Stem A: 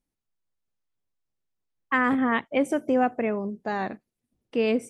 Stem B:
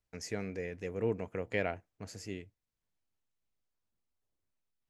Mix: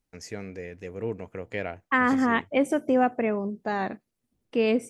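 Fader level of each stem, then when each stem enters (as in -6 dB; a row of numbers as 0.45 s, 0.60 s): +0.5 dB, +1.0 dB; 0.00 s, 0.00 s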